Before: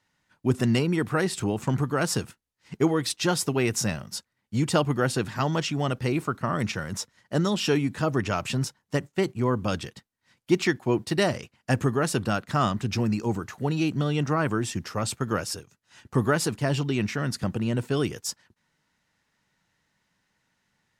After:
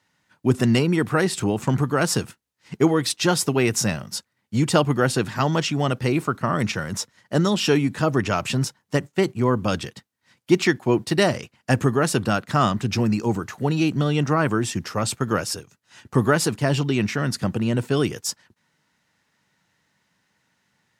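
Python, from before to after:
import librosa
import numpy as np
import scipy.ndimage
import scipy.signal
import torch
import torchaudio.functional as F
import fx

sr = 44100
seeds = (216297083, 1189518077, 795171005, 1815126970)

y = scipy.signal.sosfilt(scipy.signal.butter(2, 81.0, 'highpass', fs=sr, output='sos'), x)
y = F.gain(torch.from_numpy(y), 4.5).numpy()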